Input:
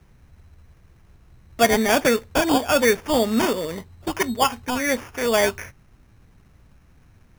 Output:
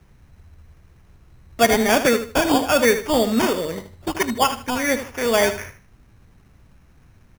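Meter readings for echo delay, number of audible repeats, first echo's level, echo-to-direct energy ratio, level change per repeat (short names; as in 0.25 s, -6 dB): 77 ms, 3, -11.0 dB, -10.5 dB, -11.5 dB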